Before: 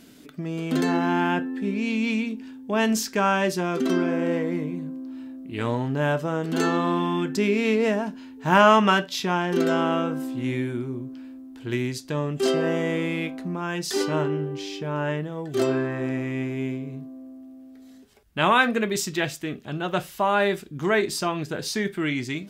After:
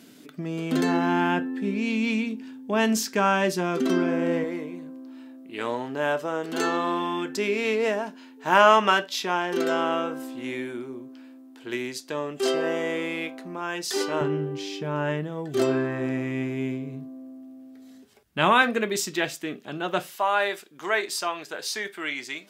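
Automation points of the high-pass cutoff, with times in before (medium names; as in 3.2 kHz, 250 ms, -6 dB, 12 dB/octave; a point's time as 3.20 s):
140 Hz
from 4.44 s 350 Hz
from 14.21 s 110 Hz
from 18.62 s 240 Hz
from 20.16 s 600 Hz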